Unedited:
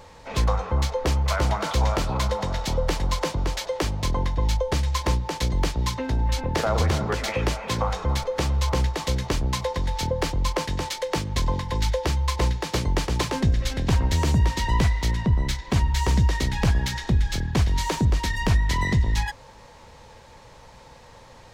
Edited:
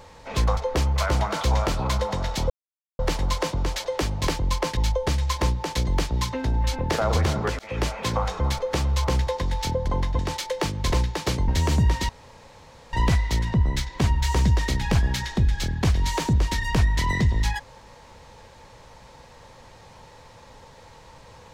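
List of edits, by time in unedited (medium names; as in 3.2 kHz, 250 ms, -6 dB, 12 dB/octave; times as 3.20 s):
0.57–0.87 s: delete
2.80 s: insert silence 0.49 s
4.09–4.42 s: swap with 10.22–10.71 s
7.24–7.50 s: fade in
8.92–9.63 s: delete
11.44–12.39 s: delete
12.95–14.04 s: delete
14.65 s: insert room tone 0.84 s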